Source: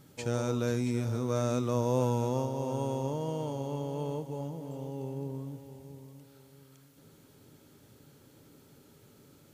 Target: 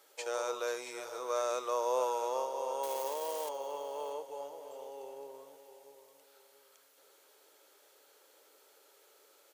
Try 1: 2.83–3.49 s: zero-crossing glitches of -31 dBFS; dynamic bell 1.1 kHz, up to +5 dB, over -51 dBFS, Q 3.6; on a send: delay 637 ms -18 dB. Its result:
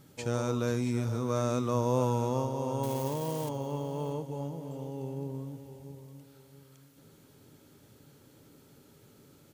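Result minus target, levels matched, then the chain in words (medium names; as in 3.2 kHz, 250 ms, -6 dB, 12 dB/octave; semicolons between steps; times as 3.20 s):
250 Hz band +16.0 dB
2.83–3.49 s: zero-crossing glitches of -31 dBFS; dynamic bell 1.1 kHz, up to +5 dB, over -51 dBFS, Q 3.6; inverse Chebyshev high-pass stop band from 230 Hz, stop band 40 dB; on a send: delay 637 ms -18 dB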